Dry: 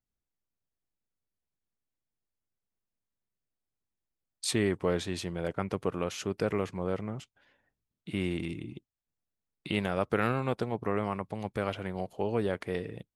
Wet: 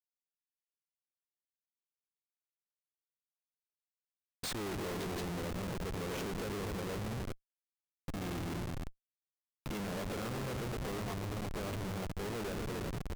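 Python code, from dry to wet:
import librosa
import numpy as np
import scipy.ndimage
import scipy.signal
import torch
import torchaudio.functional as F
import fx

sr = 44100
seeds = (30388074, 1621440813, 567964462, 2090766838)

y = fx.echo_heads(x, sr, ms=119, heads='all three', feedback_pct=44, wet_db=-13)
y = fx.schmitt(y, sr, flips_db=-36.0)
y = y * 10.0 ** (-4.0 / 20.0)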